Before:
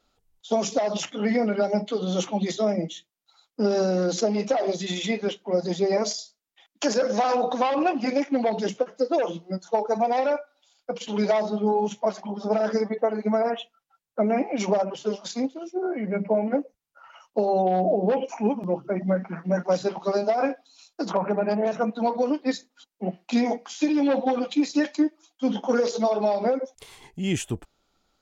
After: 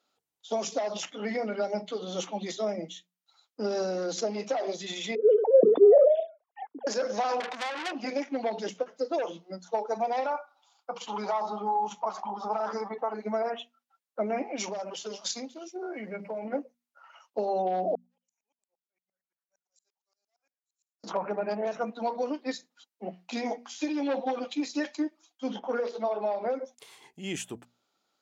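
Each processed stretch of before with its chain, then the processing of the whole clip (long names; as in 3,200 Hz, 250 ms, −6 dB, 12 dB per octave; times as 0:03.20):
0:05.15–0:06.87: three sine waves on the formant tracks + low-pass with resonance 450 Hz, resonance Q 5 + level that may fall only so fast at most 26 dB per second
0:07.40–0:07.92: notch filter 580 Hz, Q 17 + saturating transformer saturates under 3,400 Hz
0:10.26–0:13.14: flat-topped bell 1,000 Hz +13.5 dB 1 octave + downward compressor 2 to 1, threshold −24 dBFS
0:14.58–0:16.45: downward compressor, threshold −25 dBFS + parametric band 7,800 Hz +9 dB 2.8 octaves
0:17.95–0:21.04: resonant band-pass 7,600 Hz, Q 14 + tremolo with a ramp in dB swelling 8.7 Hz, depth 35 dB
0:25.59–0:26.50: low-pass filter 2,600 Hz + low-shelf EQ 140 Hz −9.5 dB
whole clip: high-pass filter 170 Hz; low-shelf EQ 320 Hz −6.5 dB; mains-hum notches 60/120/180/240 Hz; level −4.5 dB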